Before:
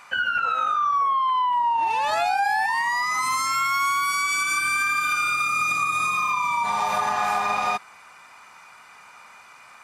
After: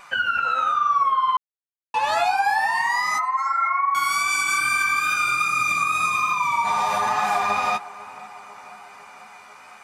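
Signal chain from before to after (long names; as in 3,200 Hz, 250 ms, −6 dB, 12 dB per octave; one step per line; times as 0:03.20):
0:03.18–0:03.95: expanding power law on the bin magnitudes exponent 3.3
pitch vibrato 2.4 Hz 16 cents
flanger 1.1 Hz, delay 5 ms, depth 8.8 ms, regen +21%
tape delay 499 ms, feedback 80%, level −16 dB, low-pass 1,400 Hz
0:01.37–0:01.94: silence
level +5 dB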